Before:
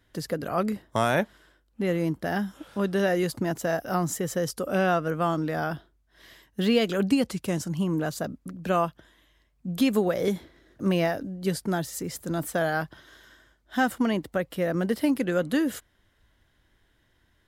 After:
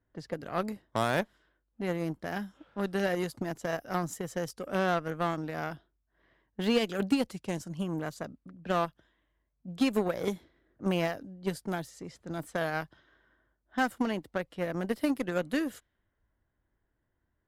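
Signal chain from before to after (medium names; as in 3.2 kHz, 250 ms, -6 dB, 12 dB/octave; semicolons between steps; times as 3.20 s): level-controlled noise filter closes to 1.3 kHz, open at -24.5 dBFS; Chebyshev shaper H 7 -22 dB, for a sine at -10 dBFS; trim -4 dB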